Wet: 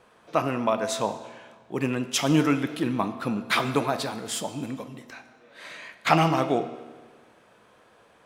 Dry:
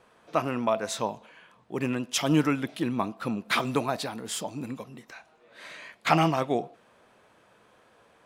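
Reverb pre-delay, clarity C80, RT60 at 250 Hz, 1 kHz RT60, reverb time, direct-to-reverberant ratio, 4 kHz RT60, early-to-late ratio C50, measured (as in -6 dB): 13 ms, 13.0 dB, 1.5 s, 1.5 s, 1.5 s, 10.0 dB, 1.3 s, 12.0 dB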